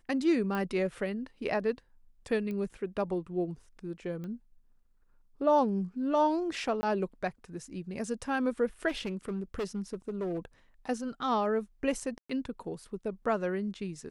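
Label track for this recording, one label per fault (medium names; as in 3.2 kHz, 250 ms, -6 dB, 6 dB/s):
0.550000	0.550000	pop -22 dBFS
2.510000	2.510000	pop -27 dBFS
4.240000	4.240000	pop -30 dBFS
6.810000	6.830000	dropout 20 ms
8.880000	10.450000	clipped -29.5 dBFS
12.180000	12.290000	dropout 115 ms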